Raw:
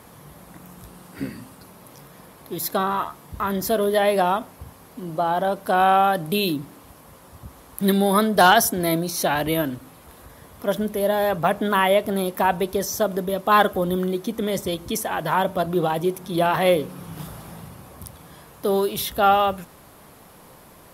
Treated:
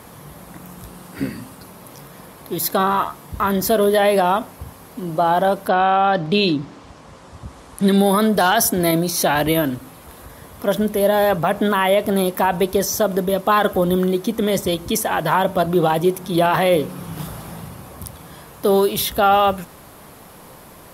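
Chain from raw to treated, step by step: 5.67–7.96 LPF 4900 Hz -> 10000 Hz 24 dB/oct; limiter -12 dBFS, peak gain reduction 8.5 dB; gain +5.5 dB

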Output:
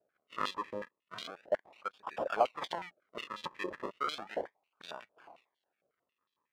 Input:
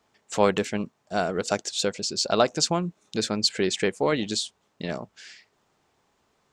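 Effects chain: decimation with a swept rate 41×, swing 100% 0.35 Hz; 1.35–2.07 level quantiser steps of 23 dB; stepped band-pass 11 Hz 590–3600 Hz

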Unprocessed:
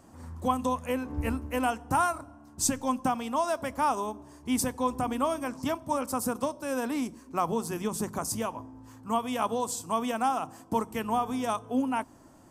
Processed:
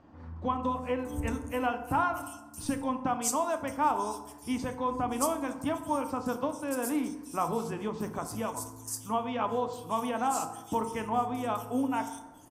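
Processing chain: bands offset in time lows, highs 0.63 s, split 4100 Hz; FDN reverb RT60 1 s, low-frequency decay 0.95×, high-frequency decay 0.5×, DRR 7 dB; gain -2.5 dB

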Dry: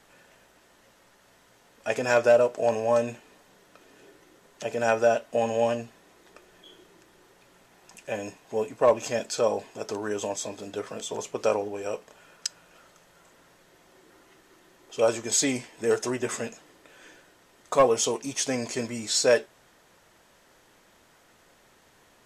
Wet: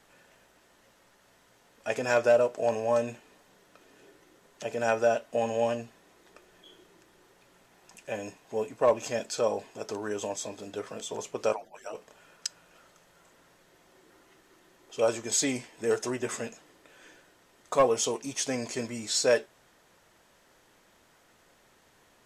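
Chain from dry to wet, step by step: 11.52–11.95 median-filter separation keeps percussive; gain -3 dB

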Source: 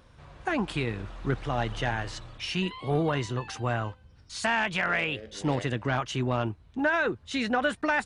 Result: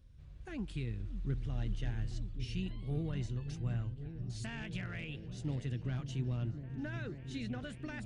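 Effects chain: passive tone stack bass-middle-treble 10-0-1; on a send: repeats that get brighter 0.547 s, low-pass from 200 Hz, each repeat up 1 oct, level -6 dB; on the sum: gain +7 dB

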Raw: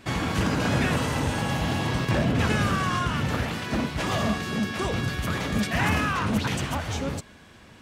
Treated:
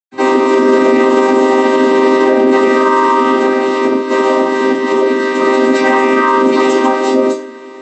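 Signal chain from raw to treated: chord vocoder minor triad, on C4; 3.22–5.31 compressor, threshold -28 dBFS, peak gain reduction 8.5 dB; reverb RT60 0.35 s, pre-delay 0.108 s; maximiser +34 dB; gain -1 dB

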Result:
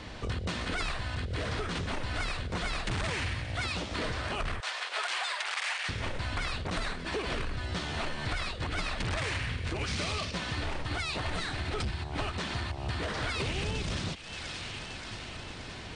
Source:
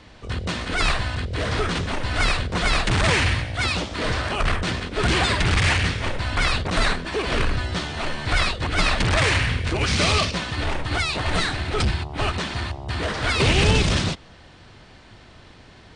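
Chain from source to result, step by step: 4.6–5.89 inverse Chebyshev high-pass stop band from 200 Hz, stop band 60 dB; thin delay 0.576 s, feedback 63%, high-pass 1500 Hz, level -20.5 dB; compressor 8:1, threshold -35 dBFS, peak gain reduction 20.5 dB; gain +4 dB

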